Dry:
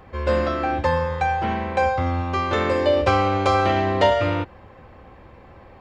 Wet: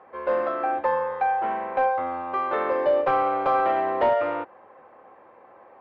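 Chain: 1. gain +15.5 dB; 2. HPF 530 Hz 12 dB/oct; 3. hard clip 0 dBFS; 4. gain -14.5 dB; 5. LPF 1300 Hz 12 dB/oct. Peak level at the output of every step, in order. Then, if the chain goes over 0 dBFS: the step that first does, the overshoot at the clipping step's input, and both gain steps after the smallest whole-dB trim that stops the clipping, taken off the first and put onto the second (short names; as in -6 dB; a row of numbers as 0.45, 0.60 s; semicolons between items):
+10.5, +9.0, 0.0, -14.5, -14.0 dBFS; step 1, 9.0 dB; step 1 +6.5 dB, step 4 -5.5 dB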